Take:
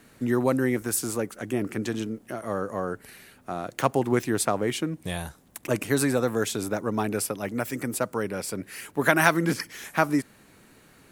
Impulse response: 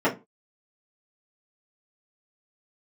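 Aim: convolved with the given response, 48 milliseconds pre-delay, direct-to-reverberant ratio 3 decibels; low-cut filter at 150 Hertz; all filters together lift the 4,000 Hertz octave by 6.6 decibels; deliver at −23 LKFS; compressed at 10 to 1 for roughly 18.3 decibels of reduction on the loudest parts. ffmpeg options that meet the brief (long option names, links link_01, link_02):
-filter_complex "[0:a]highpass=150,equalizer=frequency=4000:width_type=o:gain=8.5,acompressor=threshold=-32dB:ratio=10,asplit=2[link_01][link_02];[1:a]atrim=start_sample=2205,adelay=48[link_03];[link_02][link_03]afir=irnorm=-1:irlink=0,volume=-19dB[link_04];[link_01][link_04]amix=inputs=2:normalize=0,volume=11dB"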